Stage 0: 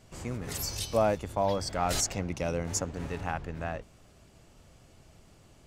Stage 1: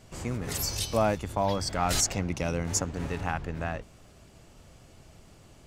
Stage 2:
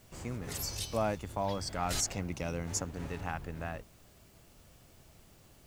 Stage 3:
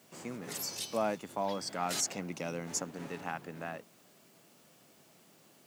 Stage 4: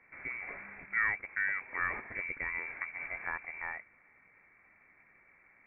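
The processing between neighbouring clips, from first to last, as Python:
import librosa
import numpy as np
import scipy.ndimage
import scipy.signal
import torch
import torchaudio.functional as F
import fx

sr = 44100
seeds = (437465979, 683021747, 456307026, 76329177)

y1 = fx.dynamic_eq(x, sr, hz=540.0, q=1.4, threshold_db=-39.0, ratio=4.0, max_db=-5)
y1 = y1 * librosa.db_to_amplitude(3.5)
y2 = fx.quant_dither(y1, sr, seeds[0], bits=10, dither='triangular')
y2 = y2 * librosa.db_to_amplitude(-6.5)
y3 = scipy.signal.sosfilt(scipy.signal.butter(4, 170.0, 'highpass', fs=sr, output='sos'), y2)
y4 = fx.freq_invert(y3, sr, carrier_hz=2500)
y4 = y4 * librosa.db_to_amplitude(1.0)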